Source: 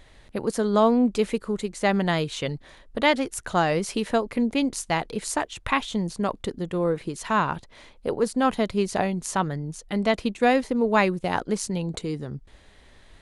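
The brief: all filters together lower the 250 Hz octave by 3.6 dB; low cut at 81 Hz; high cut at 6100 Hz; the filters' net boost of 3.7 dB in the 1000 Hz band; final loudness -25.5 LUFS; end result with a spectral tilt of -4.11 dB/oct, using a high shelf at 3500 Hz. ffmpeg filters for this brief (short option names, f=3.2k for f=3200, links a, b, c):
-af "highpass=81,lowpass=6.1k,equalizer=f=250:t=o:g=-4.5,equalizer=f=1k:t=o:g=5.5,highshelf=f=3.5k:g=-6,volume=-0.5dB"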